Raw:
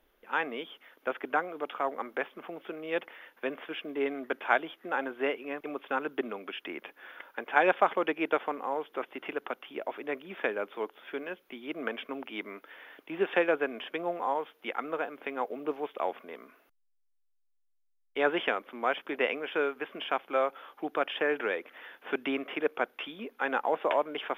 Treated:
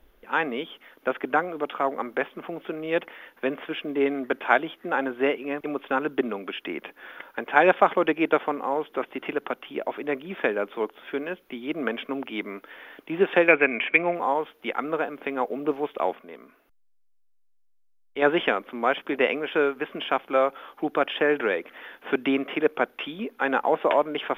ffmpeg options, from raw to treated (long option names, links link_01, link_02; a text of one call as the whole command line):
ffmpeg -i in.wav -filter_complex "[0:a]asettb=1/sr,asplit=3[link_01][link_02][link_03];[link_01]atrim=end=13.484[link_04];[link_02]atrim=start=13.48:end=14.15,asetpts=PTS-STARTPTS,afade=type=in:duration=0.004:curve=qsin,afade=type=out:start_time=0.666:duration=0.004:curve=qsin,lowpass=frequency=2300:width_type=q:width=9.8[link_05];[link_03]atrim=start=14.146[link_06];[link_04][link_05]acrossfade=duration=0.004:curve1=hsin:curve2=qsin[link_07];[link_07][link_06]acrossfade=duration=0.004:curve1=qsin:curve2=hsin,asplit=3[link_08][link_09][link_10];[link_08]atrim=end=16.152[link_11];[link_09]atrim=start=16.148:end=18.222,asetpts=PTS-STARTPTS,volume=-5.5dB[link_12];[link_10]atrim=start=18.218[link_13];[link_11][link_12]acrossfade=duration=0.004:curve1=hsin:curve2=hsin[link_14];[link_14][link_13]acrossfade=duration=0.004:curve1=hsin:curve2=hsin,lowshelf=frequency=200:gain=11.5,volume=5dB" out.wav